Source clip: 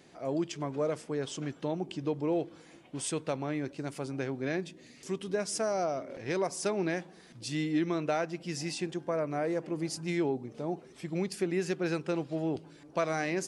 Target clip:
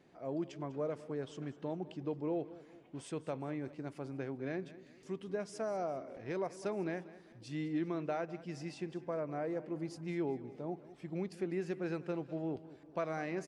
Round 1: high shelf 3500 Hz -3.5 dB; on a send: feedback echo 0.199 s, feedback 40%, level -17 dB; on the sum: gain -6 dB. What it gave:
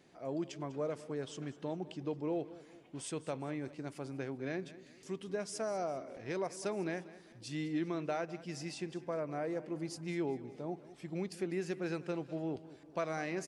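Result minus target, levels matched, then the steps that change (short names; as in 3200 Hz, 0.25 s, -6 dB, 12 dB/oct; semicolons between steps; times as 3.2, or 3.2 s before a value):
8000 Hz band +8.0 dB
change: high shelf 3500 Hz -14 dB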